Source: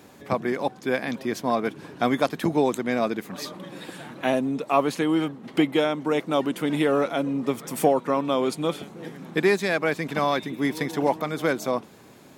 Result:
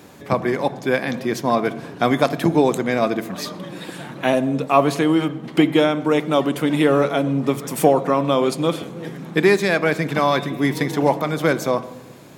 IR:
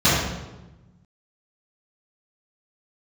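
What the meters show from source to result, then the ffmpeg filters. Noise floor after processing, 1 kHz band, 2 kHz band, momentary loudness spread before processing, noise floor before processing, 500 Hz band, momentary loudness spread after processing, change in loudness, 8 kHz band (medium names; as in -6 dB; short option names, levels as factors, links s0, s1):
-38 dBFS, +5.0 dB, +5.0 dB, 9 LU, -49 dBFS, +5.5 dB, 9 LU, +5.5 dB, +5.0 dB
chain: -filter_complex "[0:a]asplit=2[s0][s1];[1:a]atrim=start_sample=2205[s2];[s1][s2]afir=irnorm=-1:irlink=0,volume=0.0168[s3];[s0][s3]amix=inputs=2:normalize=0,volume=1.78"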